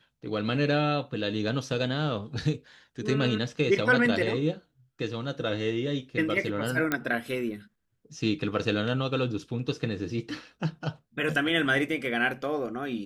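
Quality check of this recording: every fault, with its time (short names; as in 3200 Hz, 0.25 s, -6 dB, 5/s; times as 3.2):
6.92 pop -11 dBFS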